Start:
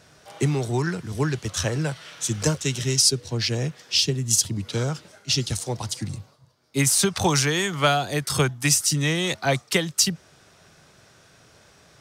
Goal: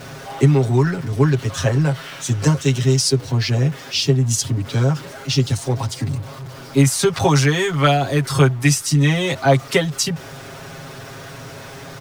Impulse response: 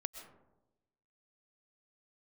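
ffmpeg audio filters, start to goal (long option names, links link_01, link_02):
-af "aeval=exprs='val(0)+0.5*0.0188*sgn(val(0))':channel_layout=same,highshelf=frequency=3000:gain=-10,aecho=1:1:7.4:0.88,volume=3.5dB"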